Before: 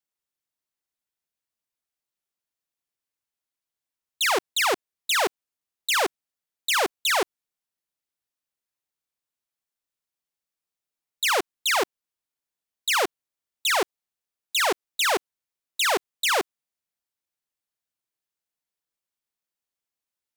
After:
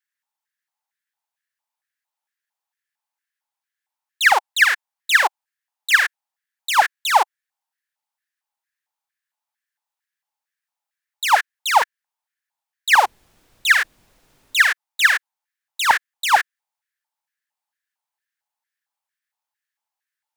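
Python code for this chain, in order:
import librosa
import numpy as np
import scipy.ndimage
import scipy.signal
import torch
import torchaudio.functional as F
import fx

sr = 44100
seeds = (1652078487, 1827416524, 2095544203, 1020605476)

y = fx.filter_lfo_highpass(x, sr, shape='square', hz=2.2, low_hz=850.0, high_hz=1700.0, q=7.2)
y = fx.dmg_noise_colour(y, sr, seeds[0], colour='pink', level_db=-59.0, at=(13.04, 14.61), fade=0.02)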